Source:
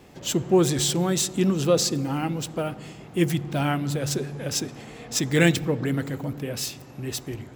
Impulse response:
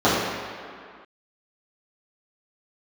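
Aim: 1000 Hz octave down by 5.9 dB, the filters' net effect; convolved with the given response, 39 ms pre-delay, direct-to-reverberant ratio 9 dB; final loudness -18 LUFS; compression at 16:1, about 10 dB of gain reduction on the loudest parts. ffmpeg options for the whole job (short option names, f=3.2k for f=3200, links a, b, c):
-filter_complex "[0:a]equalizer=f=1k:t=o:g=-9,acompressor=threshold=-24dB:ratio=16,asplit=2[a][b];[1:a]atrim=start_sample=2205,adelay=39[c];[b][c]afir=irnorm=-1:irlink=0,volume=-32.5dB[d];[a][d]amix=inputs=2:normalize=0,volume=11.5dB"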